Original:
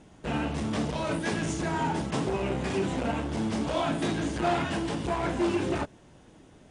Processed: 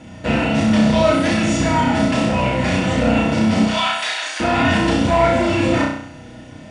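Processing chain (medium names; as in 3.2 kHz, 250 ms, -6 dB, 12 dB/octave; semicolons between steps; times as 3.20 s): 3.67–4.40 s: Bessel high-pass 1.3 kHz, order 4; peak limiter -23.5 dBFS, peak gain reduction 8.5 dB; flutter echo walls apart 5.6 m, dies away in 0.65 s; reverberation, pre-delay 3 ms, DRR 6 dB; trim +6.5 dB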